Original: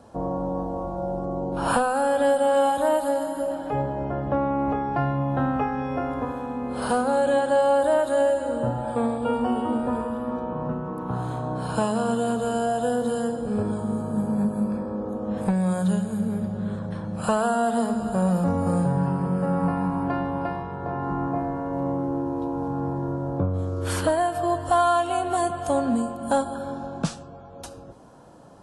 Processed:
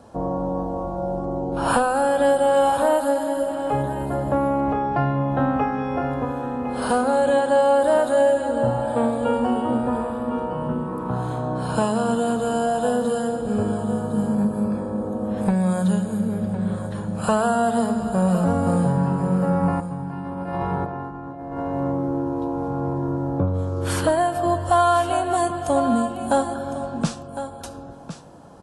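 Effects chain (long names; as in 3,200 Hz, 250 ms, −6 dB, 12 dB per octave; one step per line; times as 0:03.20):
0:19.80–0:21.60: compressor whose output falls as the input rises −32 dBFS, ratio −0.5
single-tap delay 1,057 ms −11.5 dB
level +2.5 dB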